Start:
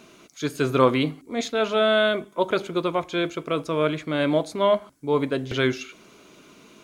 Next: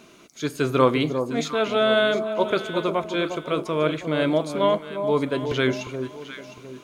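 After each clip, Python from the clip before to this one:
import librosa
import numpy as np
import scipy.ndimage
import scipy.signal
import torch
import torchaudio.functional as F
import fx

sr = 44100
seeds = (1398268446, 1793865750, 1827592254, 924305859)

y = fx.echo_alternate(x, sr, ms=354, hz=950.0, feedback_pct=56, wet_db=-7)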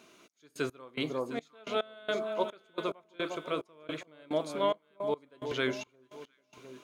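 y = fx.low_shelf(x, sr, hz=180.0, db=-11.5)
y = fx.step_gate(y, sr, bpm=108, pattern='xx..x..x', floor_db=-24.0, edge_ms=4.5)
y = y * librosa.db_to_amplitude(-7.0)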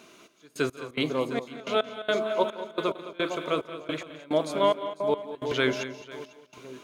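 y = fx.echo_multitap(x, sr, ms=(173, 211, 498), db=(-17.5, -13.5, -19.5))
y = y * librosa.db_to_amplitude(6.0)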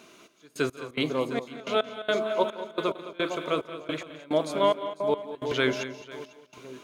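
y = x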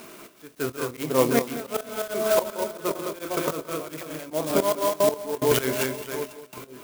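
y = fx.auto_swell(x, sr, attack_ms=261.0)
y = fx.doubler(y, sr, ms=25.0, db=-13)
y = fx.clock_jitter(y, sr, seeds[0], jitter_ms=0.065)
y = y * librosa.db_to_amplitude(9.0)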